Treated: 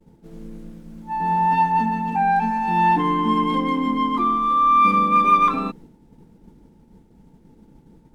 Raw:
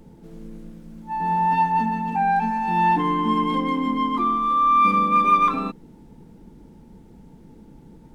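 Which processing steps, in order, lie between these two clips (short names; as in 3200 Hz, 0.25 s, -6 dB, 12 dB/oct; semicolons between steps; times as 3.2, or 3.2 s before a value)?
expander -40 dBFS; gain +1.5 dB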